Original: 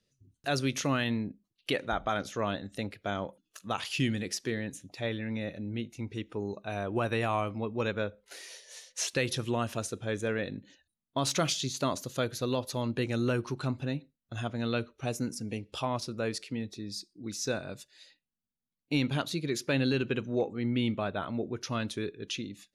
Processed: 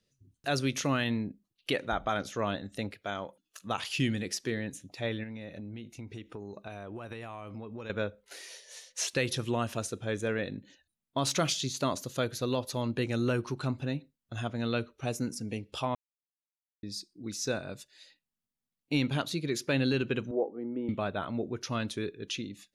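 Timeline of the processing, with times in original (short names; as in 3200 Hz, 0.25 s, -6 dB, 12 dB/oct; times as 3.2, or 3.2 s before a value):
2.95–3.61 low shelf 430 Hz -7.5 dB
5.23–7.9 compressor 10:1, threshold -37 dBFS
15.95–16.83 mute
20.31–20.89 Butterworth band-pass 510 Hz, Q 0.81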